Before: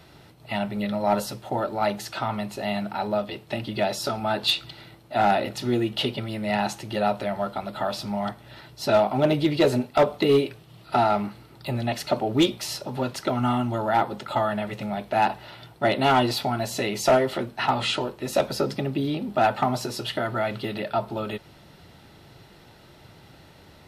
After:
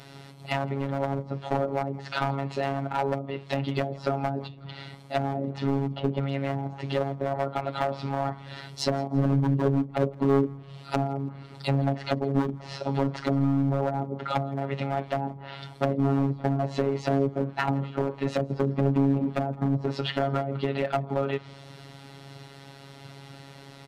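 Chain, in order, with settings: treble ducked by the level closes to 320 Hz, closed at -20.5 dBFS; Chebyshev band-pass 120–9800 Hz, order 2; overloaded stage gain 25 dB; robotiser 138 Hz; feedback echo 0.166 s, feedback 36%, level -24 dB; gain +7 dB

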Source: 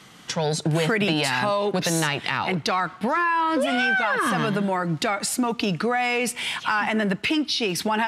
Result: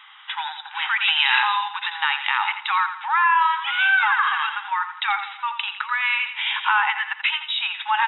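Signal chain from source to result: brick-wall FIR band-pass 780–3900 Hz; 1.04–1.57 tilt +3 dB/oct; feedback echo 85 ms, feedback 40%, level -10 dB; gain +4 dB

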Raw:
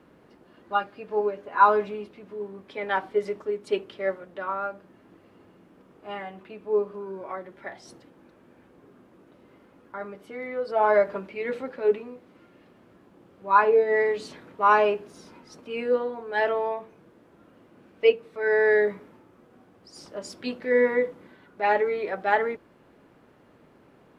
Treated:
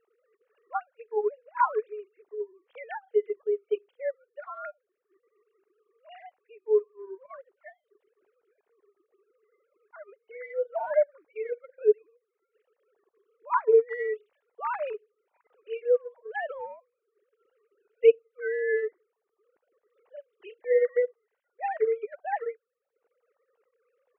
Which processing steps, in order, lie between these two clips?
sine-wave speech; transient shaper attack 0 dB, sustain -6 dB, from 3.64 s sustain -12 dB; gain -3.5 dB

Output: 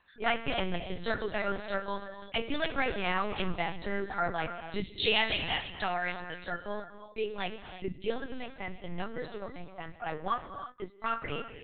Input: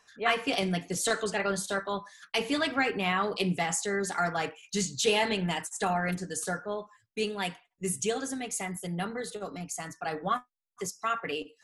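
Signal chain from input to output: 4.84–6.52 tilt +3.5 dB/oct; non-linear reverb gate 0.36 s rising, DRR 9 dB; LPC vocoder at 8 kHz pitch kept; gain -2.5 dB

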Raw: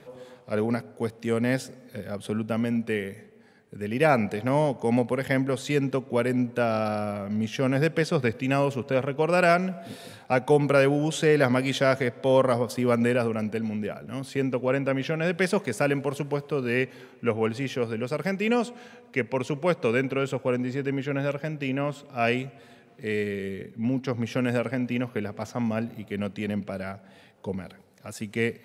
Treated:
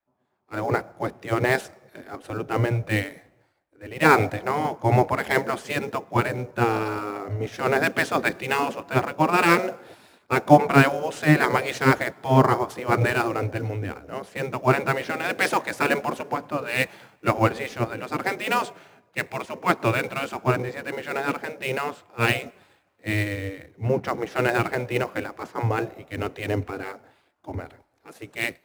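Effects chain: spectral gate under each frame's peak -10 dB weak; AGC gain up to 14.5 dB; high shelf 2300 Hz -10.5 dB; in parallel at -9.5 dB: sample-rate reducer 6000 Hz, jitter 20%; on the sum: three-band expander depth 70%; gain -3 dB

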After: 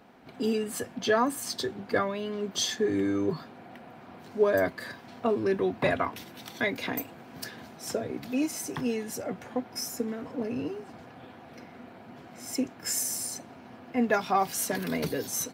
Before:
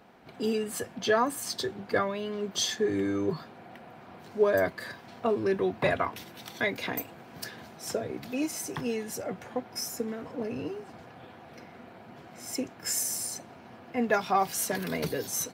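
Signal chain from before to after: bell 260 Hz +5.5 dB 0.32 oct

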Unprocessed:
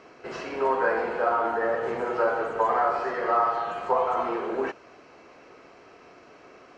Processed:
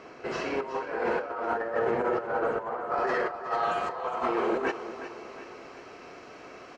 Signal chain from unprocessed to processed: high shelf 3000 Hz -2 dB, from 1.79 s -10 dB, from 3.07 s +3 dB; negative-ratio compressor -29 dBFS, ratio -0.5; feedback echo 0.365 s, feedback 51%, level -12 dB

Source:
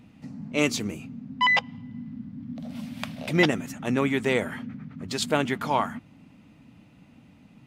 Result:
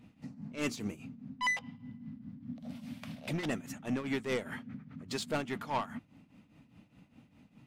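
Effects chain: soft clip -21.5 dBFS, distortion -9 dB; tremolo triangle 4.9 Hz, depth 80%; gain -3.5 dB

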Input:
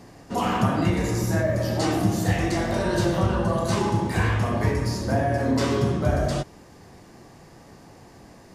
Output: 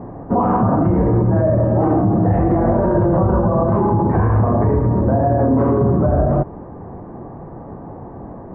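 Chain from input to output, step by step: LPF 1100 Hz 24 dB/oct; maximiser +22 dB; gain -7 dB

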